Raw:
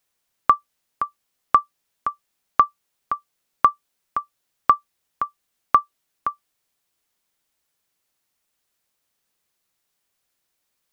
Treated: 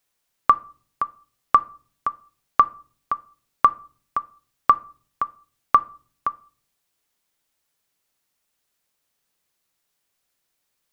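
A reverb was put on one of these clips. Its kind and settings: simulated room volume 400 m³, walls furnished, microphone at 0.31 m

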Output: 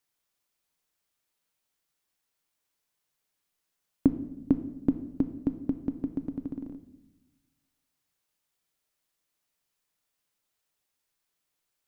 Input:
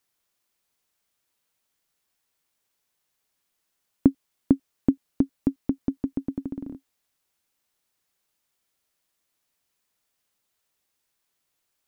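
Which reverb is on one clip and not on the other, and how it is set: simulated room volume 410 m³, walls mixed, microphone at 0.44 m; trim -4.5 dB

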